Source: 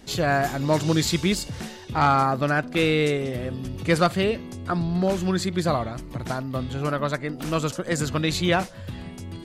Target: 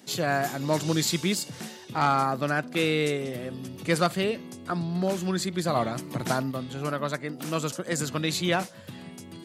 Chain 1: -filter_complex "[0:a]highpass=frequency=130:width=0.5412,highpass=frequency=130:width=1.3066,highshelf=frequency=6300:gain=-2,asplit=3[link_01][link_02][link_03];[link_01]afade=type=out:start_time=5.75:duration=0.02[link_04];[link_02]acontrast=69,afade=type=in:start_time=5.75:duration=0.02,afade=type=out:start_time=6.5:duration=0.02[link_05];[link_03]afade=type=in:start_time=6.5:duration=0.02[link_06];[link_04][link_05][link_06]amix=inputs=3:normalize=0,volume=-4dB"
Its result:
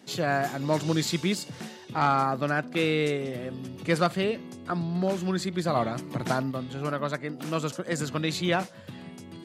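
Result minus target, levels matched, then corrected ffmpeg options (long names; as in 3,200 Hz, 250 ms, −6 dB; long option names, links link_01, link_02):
8,000 Hz band −5.0 dB
-filter_complex "[0:a]highpass=frequency=130:width=0.5412,highpass=frequency=130:width=1.3066,highshelf=frequency=6300:gain=7.5,asplit=3[link_01][link_02][link_03];[link_01]afade=type=out:start_time=5.75:duration=0.02[link_04];[link_02]acontrast=69,afade=type=in:start_time=5.75:duration=0.02,afade=type=out:start_time=6.5:duration=0.02[link_05];[link_03]afade=type=in:start_time=6.5:duration=0.02[link_06];[link_04][link_05][link_06]amix=inputs=3:normalize=0,volume=-4dB"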